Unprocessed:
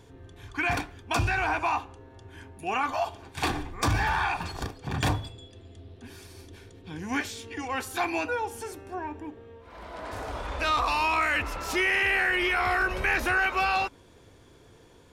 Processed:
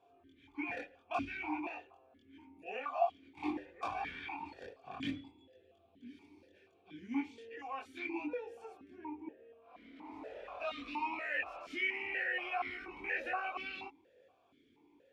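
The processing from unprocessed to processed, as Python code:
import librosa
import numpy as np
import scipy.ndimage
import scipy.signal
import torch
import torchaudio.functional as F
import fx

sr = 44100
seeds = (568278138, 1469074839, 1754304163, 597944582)

y = fx.chorus_voices(x, sr, voices=4, hz=0.14, base_ms=23, depth_ms=2.8, mix_pct=50)
y = fx.vowel_held(y, sr, hz=4.2)
y = y * librosa.db_to_amplitude(2.5)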